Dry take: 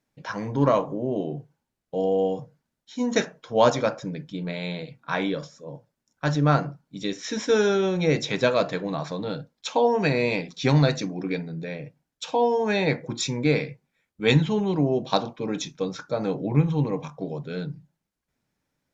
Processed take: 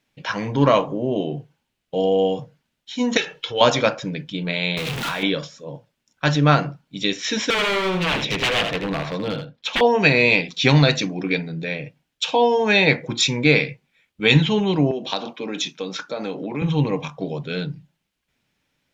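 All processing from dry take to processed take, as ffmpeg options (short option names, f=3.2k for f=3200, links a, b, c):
-filter_complex "[0:a]asettb=1/sr,asplit=3[a][b][c];[a]atrim=end=3.174[d];[b]atrim=start=3.17:end=3.61,asetpts=PTS-STARTPTS,afade=t=in:d=0.004:c=qsin,afade=t=out:st=0.436:d=0.004:c=qsin,equalizer=f=3.2k:t=o:w=1.1:g=10.5,aecho=1:1:2.3:0.69,atrim=end_sample=19404,acompressor=threshold=-34dB:ratio=2:attack=3.2:release=140:knee=1:detection=peak[e];[c]atrim=start=3.606[f];[d][e]acrossfade=d=0.004:c1=hsin:c2=qsin[g];[g][f]acrossfade=d=0.004:c1=qsin:c2=hsin,asettb=1/sr,asplit=3[h][i][j];[h]atrim=end=4.774[k];[i]atrim=start=4.77:end=5.23,asetpts=PTS-STARTPTS,afade=t=in:d=0.004:c=qsin,afade=t=out:st=0.456:d=0.004:c=qsin,aeval=exprs='val(0)+0.5*0.0447*sgn(val(0))':c=same,acompressor=threshold=-29dB:ratio=10:attack=3.2:release=140:knee=1:detection=peak[l];[j]atrim=start=5.226[m];[k][l]acrossfade=d=0.004:c1=hsin:c2=qsin[n];[n][m]acrossfade=d=0.004:c1=qsin:c2=hsin,asettb=1/sr,asplit=3[o][p][q];[o]atrim=end=7.504[r];[p]atrim=start=7.5:end=9.81,asetpts=PTS-STARTPTS,afade=t=in:d=0.004:c=qsin,afade=t=out:st=2.306:d=0.004:c=qsin,lowpass=f=2.1k:p=1,aeval=exprs='0.0668*(abs(mod(val(0)/0.0668+3,4)-2)-1)':c=same,aecho=1:1:81:0.422,atrim=end_sample=101871[s];[q]atrim=start=9.806[t];[r][s]acrossfade=d=0.004:c1=hsin:c2=qsin[u];[u][t]acrossfade=d=0.004:c1=qsin:c2=hsin,asettb=1/sr,asplit=3[v][w][x];[v]atrim=end=14.914[y];[w]atrim=start=14.91:end=16.62,asetpts=PTS-STARTPTS,afade=t=in:d=0.004:c=qsin,afade=t=out:st=1.706:d=0.004:c=qsin,highpass=f=190:w=0.5412,highpass=f=190:w=1.3066,acompressor=threshold=-30dB:ratio=2.5:attack=3.2:release=140:knee=1:detection=peak[z];[x]atrim=start=16.616[aa];[y][z]acrossfade=d=0.004:c1=hsin:c2=qsin[ab];[ab][aa]acrossfade=d=0.004:c1=qsin:c2=hsin,equalizer=f=2.9k:w=1.2:g=11,alimiter=level_in=5dB:limit=-1dB:release=50:level=0:latency=1,volume=-1dB"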